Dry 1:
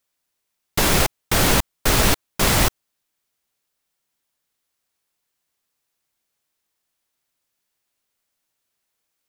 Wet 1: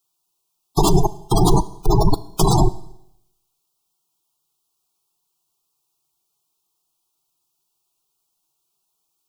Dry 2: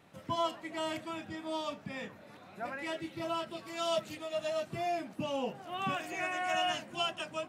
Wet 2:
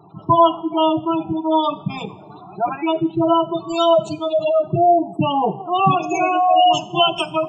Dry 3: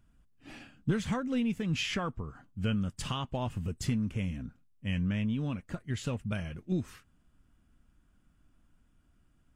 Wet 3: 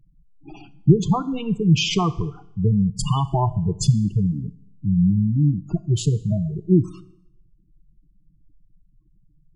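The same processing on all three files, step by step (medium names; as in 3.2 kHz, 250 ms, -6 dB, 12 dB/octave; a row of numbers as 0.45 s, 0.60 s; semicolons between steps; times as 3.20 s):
static phaser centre 360 Hz, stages 8; in parallel at -3.5 dB: bit crusher 7-bit; on the sum: dynamic bell 1.7 kHz, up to -5 dB, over -41 dBFS, Q 1.5; spectral gate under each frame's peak -15 dB strong; Schroeder reverb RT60 0.79 s, combs from 27 ms, DRR 16.5 dB; peak normalisation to -2 dBFS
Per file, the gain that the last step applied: +5.0 dB, +18.0 dB, +12.5 dB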